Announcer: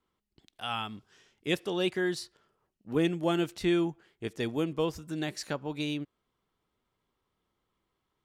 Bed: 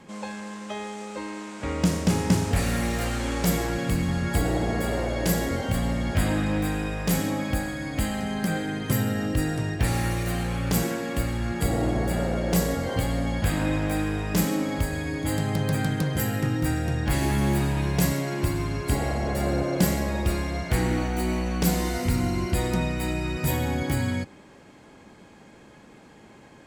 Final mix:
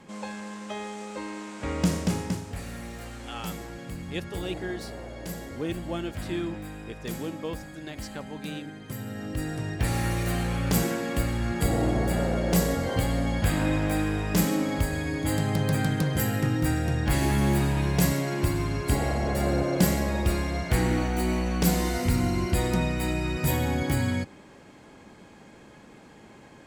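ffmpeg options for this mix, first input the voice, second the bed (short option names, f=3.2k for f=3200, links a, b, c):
-filter_complex "[0:a]adelay=2650,volume=-5dB[a];[1:a]volume=11dB,afade=t=out:st=1.91:d=0.52:silence=0.281838,afade=t=in:st=8.97:d=1.3:silence=0.237137[b];[a][b]amix=inputs=2:normalize=0"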